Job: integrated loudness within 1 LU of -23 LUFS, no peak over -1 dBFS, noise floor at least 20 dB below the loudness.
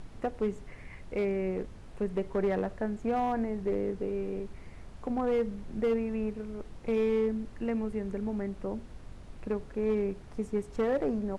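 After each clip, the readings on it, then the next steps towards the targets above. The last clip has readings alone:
clipped 1.2%; flat tops at -22.5 dBFS; noise floor -48 dBFS; noise floor target -53 dBFS; loudness -32.5 LUFS; peak -22.5 dBFS; loudness target -23.0 LUFS
-> clip repair -22.5 dBFS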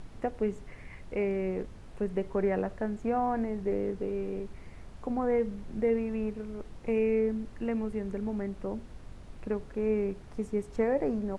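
clipped 0.0%; noise floor -48 dBFS; noise floor target -52 dBFS
-> noise print and reduce 6 dB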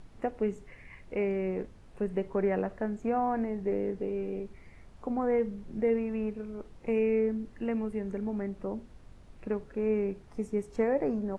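noise floor -53 dBFS; loudness -32.0 LUFS; peak -17.0 dBFS; loudness target -23.0 LUFS
-> gain +9 dB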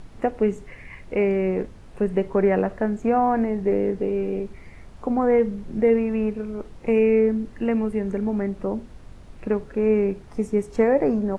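loudness -23.0 LUFS; peak -8.0 dBFS; noise floor -44 dBFS

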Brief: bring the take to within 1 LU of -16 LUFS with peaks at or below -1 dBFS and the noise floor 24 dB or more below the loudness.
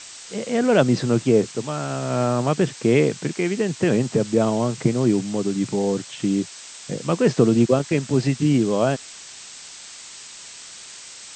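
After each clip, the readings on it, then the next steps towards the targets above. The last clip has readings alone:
noise floor -41 dBFS; noise floor target -45 dBFS; loudness -21.0 LUFS; peak -3.0 dBFS; loudness target -16.0 LUFS
-> noise print and reduce 6 dB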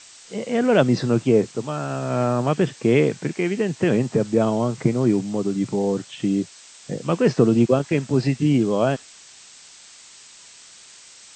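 noise floor -47 dBFS; loudness -21.0 LUFS; peak -3.5 dBFS; loudness target -16.0 LUFS
-> gain +5 dB; limiter -1 dBFS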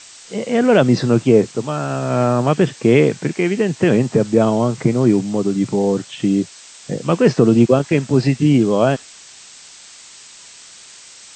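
loudness -16.5 LUFS; peak -1.0 dBFS; noise floor -42 dBFS

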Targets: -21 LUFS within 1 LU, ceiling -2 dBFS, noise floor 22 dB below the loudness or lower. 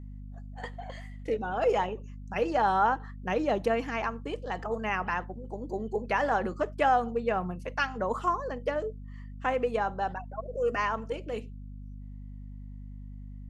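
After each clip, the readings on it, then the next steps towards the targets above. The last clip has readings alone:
hum 50 Hz; harmonics up to 250 Hz; hum level -40 dBFS; loudness -30.5 LUFS; peak -13.5 dBFS; loudness target -21.0 LUFS
-> de-hum 50 Hz, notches 5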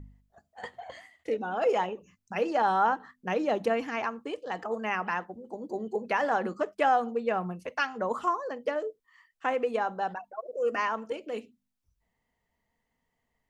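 hum none; loudness -30.5 LUFS; peak -13.5 dBFS; loudness target -21.0 LUFS
-> gain +9.5 dB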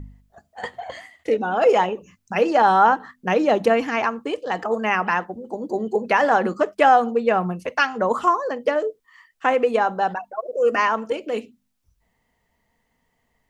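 loudness -21.0 LUFS; peak -4.0 dBFS; noise floor -71 dBFS

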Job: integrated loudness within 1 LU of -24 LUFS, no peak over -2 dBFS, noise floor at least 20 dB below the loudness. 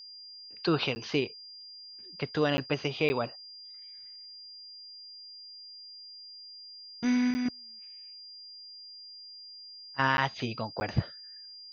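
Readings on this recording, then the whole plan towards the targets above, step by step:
dropouts 6; longest dropout 10 ms; steady tone 4800 Hz; tone level -45 dBFS; loudness -30.5 LUFS; peak -10.5 dBFS; loudness target -24.0 LUFS
-> interpolate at 0.95/2.57/3.09/7.34/10.17/10.8, 10 ms; notch 4800 Hz, Q 30; gain +6.5 dB

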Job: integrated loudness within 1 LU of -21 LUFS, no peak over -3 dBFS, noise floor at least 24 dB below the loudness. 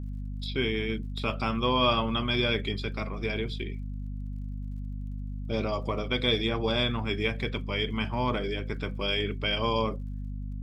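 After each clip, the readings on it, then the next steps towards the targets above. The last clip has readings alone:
ticks 42/s; hum 50 Hz; harmonics up to 250 Hz; hum level -32 dBFS; loudness -30.0 LUFS; peak -12.5 dBFS; loudness target -21.0 LUFS
-> de-click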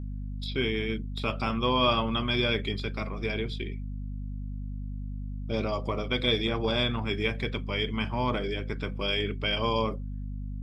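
ticks 0/s; hum 50 Hz; harmonics up to 250 Hz; hum level -32 dBFS
-> notches 50/100/150/200/250 Hz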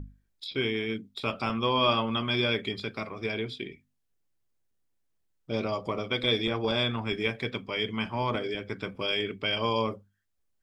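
hum none; loudness -29.5 LUFS; peak -12.5 dBFS; loudness target -21.0 LUFS
-> gain +8.5 dB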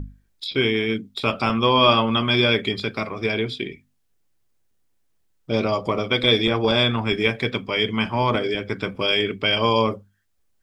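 loudness -21.0 LUFS; peak -4.0 dBFS; noise floor -66 dBFS

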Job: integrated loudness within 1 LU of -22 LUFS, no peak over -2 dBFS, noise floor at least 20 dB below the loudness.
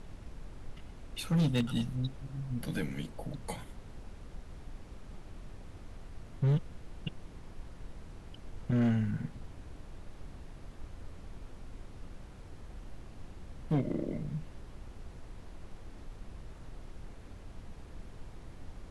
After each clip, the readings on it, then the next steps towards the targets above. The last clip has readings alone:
clipped 0.9%; flat tops at -23.5 dBFS; noise floor -50 dBFS; noise floor target -55 dBFS; loudness -34.5 LUFS; peak -23.5 dBFS; loudness target -22.0 LUFS
-> clip repair -23.5 dBFS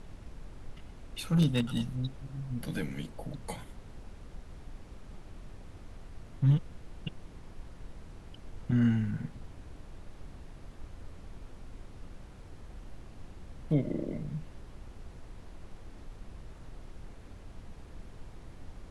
clipped 0.0%; noise floor -50 dBFS; noise floor target -53 dBFS
-> noise print and reduce 6 dB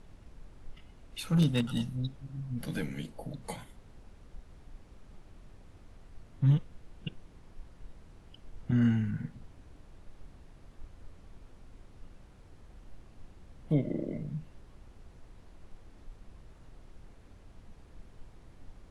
noise floor -56 dBFS; loudness -32.5 LUFS; peak -15.0 dBFS; loudness target -22.0 LUFS
-> gain +10.5 dB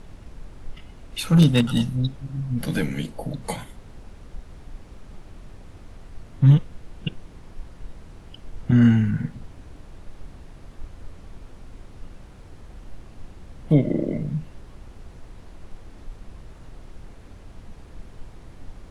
loudness -22.0 LUFS; peak -4.5 dBFS; noise floor -45 dBFS

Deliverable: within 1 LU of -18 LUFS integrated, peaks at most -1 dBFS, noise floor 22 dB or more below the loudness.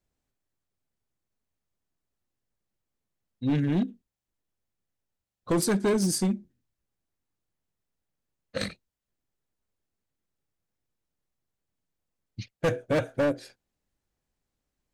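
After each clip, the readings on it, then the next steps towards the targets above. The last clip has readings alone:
clipped 1.2%; flat tops at -20.0 dBFS; loudness -28.0 LUFS; peak -20.0 dBFS; loudness target -18.0 LUFS
-> clip repair -20 dBFS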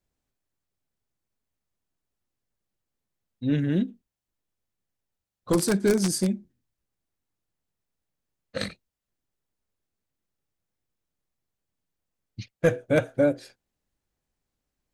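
clipped 0.0%; loudness -25.5 LUFS; peak -11.0 dBFS; loudness target -18.0 LUFS
-> gain +7.5 dB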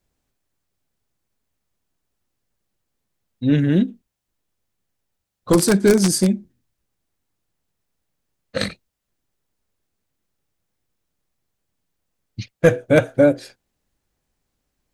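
loudness -18.0 LUFS; peak -3.5 dBFS; noise floor -78 dBFS

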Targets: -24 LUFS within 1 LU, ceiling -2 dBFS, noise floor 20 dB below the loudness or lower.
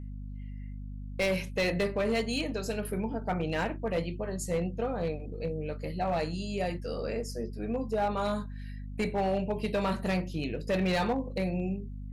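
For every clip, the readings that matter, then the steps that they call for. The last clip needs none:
clipped 1.5%; flat tops at -23.0 dBFS; hum 50 Hz; harmonics up to 250 Hz; hum level -38 dBFS; loudness -32.0 LUFS; peak -23.0 dBFS; loudness target -24.0 LUFS
-> clip repair -23 dBFS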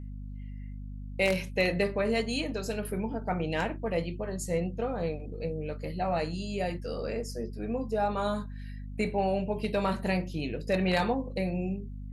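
clipped 0.0%; hum 50 Hz; harmonics up to 250 Hz; hum level -37 dBFS
-> notches 50/100/150/200/250 Hz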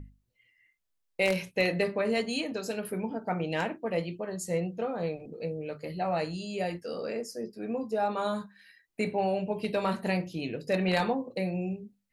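hum none; loudness -31.5 LUFS; peak -13.5 dBFS; loudness target -24.0 LUFS
-> gain +7.5 dB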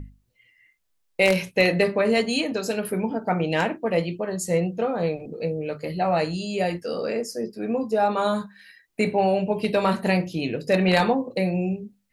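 loudness -24.0 LUFS; peak -6.0 dBFS; noise floor -70 dBFS

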